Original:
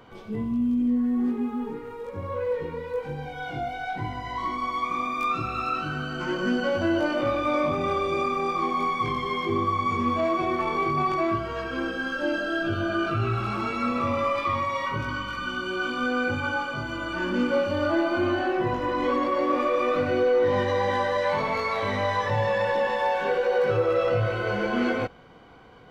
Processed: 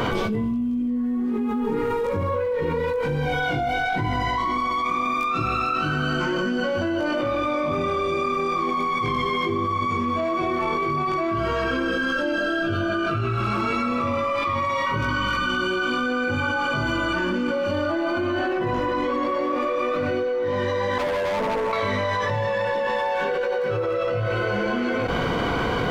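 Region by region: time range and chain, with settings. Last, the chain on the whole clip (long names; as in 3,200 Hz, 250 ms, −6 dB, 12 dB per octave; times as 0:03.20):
0:20.98–0:21.73: elliptic band-pass filter 190–930 Hz + hard clipping −32 dBFS
whole clip: notch filter 780 Hz, Q 12; envelope flattener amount 100%; level −4.5 dB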